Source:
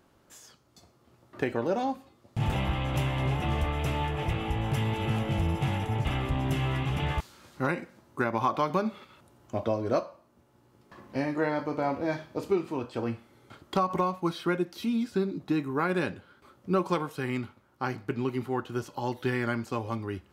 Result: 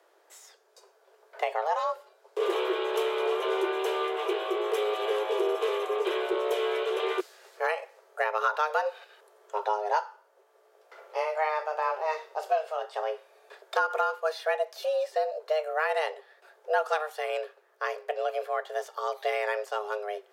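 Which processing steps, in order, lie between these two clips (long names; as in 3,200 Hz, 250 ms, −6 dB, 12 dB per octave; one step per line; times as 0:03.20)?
frequency shifter +310 Hz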